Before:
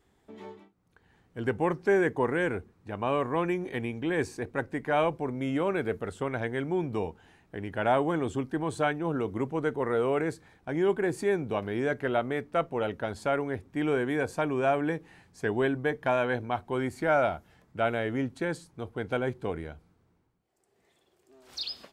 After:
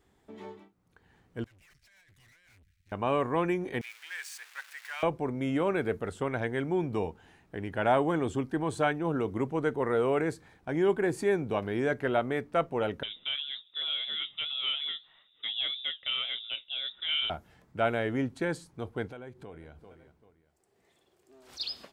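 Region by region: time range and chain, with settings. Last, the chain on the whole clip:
1.44–2.92 inverse Chebyshev band-stop 190–920 Hz, stop band 50 dB + negative-ratio compressor -47 dBFS, ratio -0.5 + tube stage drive 60 dB, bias 0.75
3.81–5.03 zero-crossing step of -35 dBFS + ladder high-pass 1300 Hz, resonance 20% + Doppler distortion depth 0.23 ms
13.03–17.3 inverted band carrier 3700 Hz + bell 2000 Hz -5.5 dB 0.99 oct + flange 1.8 Hz, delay 4.4 ms, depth 3.9 ms, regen +69%
19.07–21.6 feedback echo 0.39 s, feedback 32%, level -21 dB + compressor 3:1, threshold -46 dBFS
whole clip: dry

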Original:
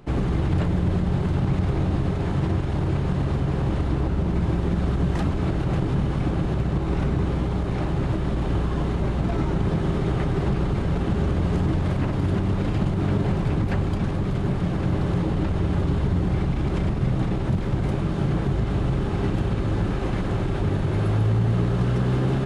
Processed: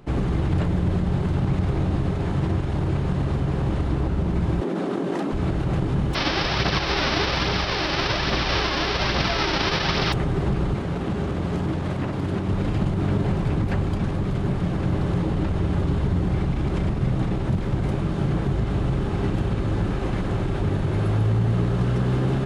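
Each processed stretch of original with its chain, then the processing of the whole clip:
4.61–5.32 HPF 260 Hz 24 dB/oct + tilt shelf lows +4.5 dB, about 660 Hz + fast leveller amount 100%
6.13–10.12 spectral whitening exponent 0.3 + steep low-pass 5600 Hz 96 dB/oct + phaser 1.2 Hz, delay 3.7 ms, feedback 35%
10.76–12.49 HPF 130 Hz 6 dB/oct + Doppler distortion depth 0.16 ms
whole clip: dry

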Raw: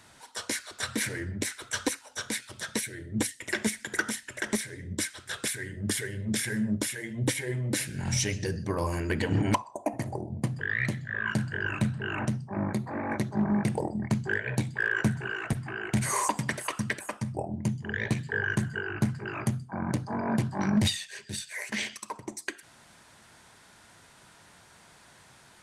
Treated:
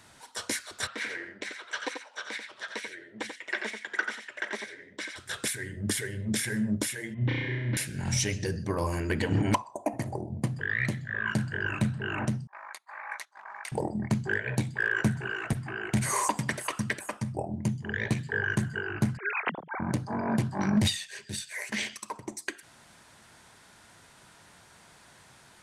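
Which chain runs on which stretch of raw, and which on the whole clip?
0.87–5.16 BPF 550–3400 Hz + echo 88 ms -6.5 dB
7.14–7.77 inverse Chebyshev low-pass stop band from 8700 Hz, stop band 60 dB + bell 470 Hz -9 dB 2.3 oct + flutter echo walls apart 5.7 m, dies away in 1.1 s
12.47–13.72 HPF 1000 Hz 24 dB/oct + gate -46 dBFS, range -16 dB
19.17–19.8 sine-wave speech + tilt +4.5 dB/oct
whole clip: dry

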